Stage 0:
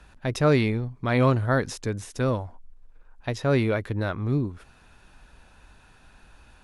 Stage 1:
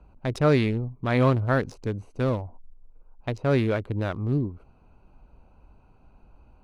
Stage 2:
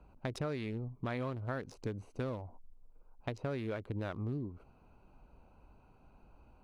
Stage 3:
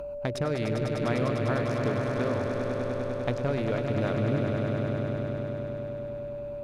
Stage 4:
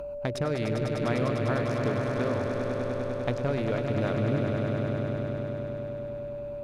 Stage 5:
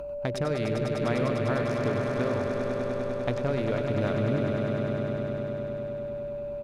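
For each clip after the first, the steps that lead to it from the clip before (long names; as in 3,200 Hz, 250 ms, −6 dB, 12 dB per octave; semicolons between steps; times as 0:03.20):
adaptive Wiener filter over 25 samples
low-shelf EQ 110 Hz −5.5 dB; downward compressor 12 to 1, threshold −31 dBFS, peak gain reduction 15 dB; level −3 dB
echo that builds up and dies away 100 ms, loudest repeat 5, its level −7.5 dB; upward compression, threshold −50 dBFS; steady tone 580 Hz −41 dBFS; level +7 dB
no processing that can be heard
single-tap delay 95 ms −10.5 dB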